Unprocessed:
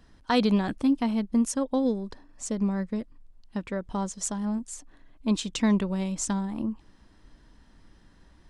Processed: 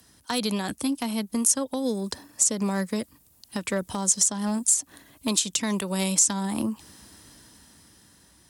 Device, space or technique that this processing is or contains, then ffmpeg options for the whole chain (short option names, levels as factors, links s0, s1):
FM broadcast chain: -filter_complex "[0:a]highpass=f=70:w=0.5412,highpass=f=70:w=1.3066,dynaudnorm=f=330:g=9:m=2.99,acrossover=split=140|390|7100[s0][s1][s2][s3];[s0]acompressor=threshold=0.0112:ratio=4[s4];[s1]acompressor=threshold=0.0355:ratio=4[s5];[s2]acompressor=threshold=0.0501:ratio=4[s6];[s3]acompressor=threshold=0.00891:ratio=4[s7];[s4][s5][s6][s7]amix=inputs=4:normalize=0,aemphasis=mode=production:type=50fm,alimiter=limit=0.158:level=0:latency=1:release=225,asoftclip=type=hard:threshold=0.119,lowpass=f=15000:w=0.5412,lowpass=f=15000:w=1.3066,aemphasis=mode=production:type=50fm"